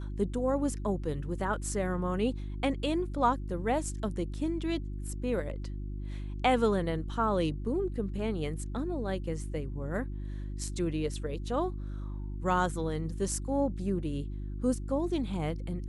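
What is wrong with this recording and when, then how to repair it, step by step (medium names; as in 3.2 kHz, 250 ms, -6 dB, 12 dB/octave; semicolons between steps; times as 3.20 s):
hum 50 Hz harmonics 7 -37 dBFS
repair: de-hum 50 Hz, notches 7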